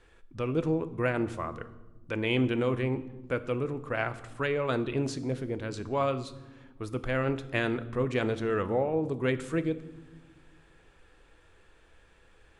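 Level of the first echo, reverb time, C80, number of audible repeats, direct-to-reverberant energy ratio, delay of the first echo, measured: none, 1.2 s, 17.5 dB, none, 11.0 dB, none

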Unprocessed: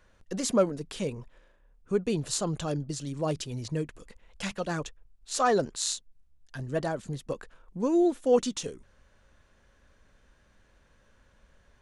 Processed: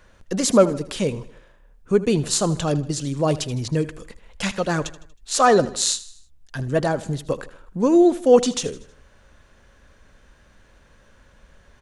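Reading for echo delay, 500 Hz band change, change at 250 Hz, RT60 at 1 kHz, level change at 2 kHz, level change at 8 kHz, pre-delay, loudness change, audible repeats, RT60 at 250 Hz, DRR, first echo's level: 79 ms, +9.0 dB, +9.0 dB, none, +9.0 dB, +9.0 dB, none, +9.0 dB, 3, none, none, -17.0 dB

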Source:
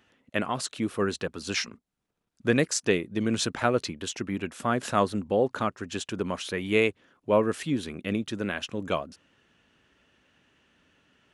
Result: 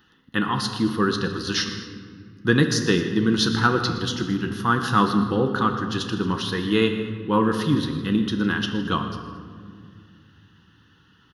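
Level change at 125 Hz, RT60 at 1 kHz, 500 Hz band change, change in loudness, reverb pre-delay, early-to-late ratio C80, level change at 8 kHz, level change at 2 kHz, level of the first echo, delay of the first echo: +9.5 dB, 1.9 s, +1.0 dB, +5.5 dB, 6 ms, 8.0 dB, 0.0 dB, +5.5 dB, -16.0 dB, 0.119 s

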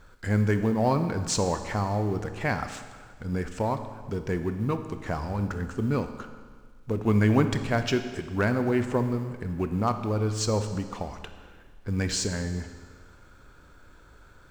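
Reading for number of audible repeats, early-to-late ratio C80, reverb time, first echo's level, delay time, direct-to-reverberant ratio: none, 10.5 dB, 1.6 s, none, none, 8.0 dB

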